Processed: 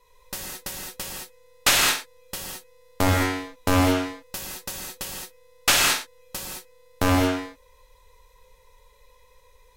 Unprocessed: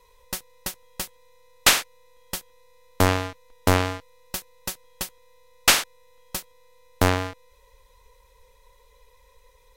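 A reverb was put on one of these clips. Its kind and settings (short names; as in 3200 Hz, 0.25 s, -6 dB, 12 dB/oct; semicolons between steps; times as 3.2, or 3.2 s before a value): non-linear reverb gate 0.24 s flat, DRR -3.5 dB; gain -4 dB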